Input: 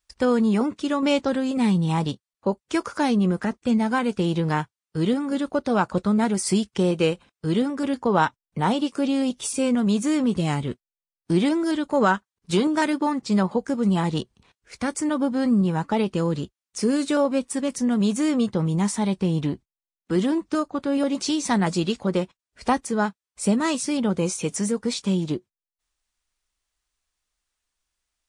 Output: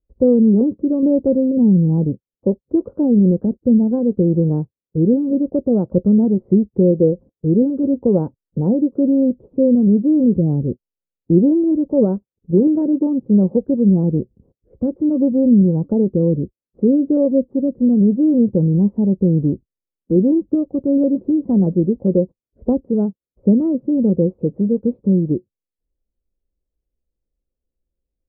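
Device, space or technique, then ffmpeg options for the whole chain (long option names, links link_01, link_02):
under water: -af "lowpass=frequency=440:width=0.5412,lowpass=frequency=440:width=1.3066,equalizer=frequency=530:width_type=o:width=0.21:gain=9,volume=8dB"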